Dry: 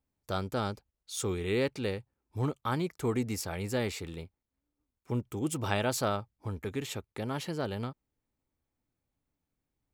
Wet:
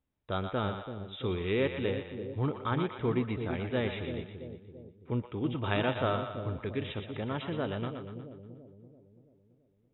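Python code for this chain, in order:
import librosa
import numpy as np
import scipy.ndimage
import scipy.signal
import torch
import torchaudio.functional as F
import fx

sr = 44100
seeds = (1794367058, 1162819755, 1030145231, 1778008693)

y = fx.brickwall_lowpass(x, sr, high_hz=3900.0)
y = fx.notch(y, sr, hz=810.0, q=19.0)
y = fx.echo_split(y, sr, split_hz=550.0, low_ms=335, high_ms=120, feedback_pct=52, wet_db=-7.0)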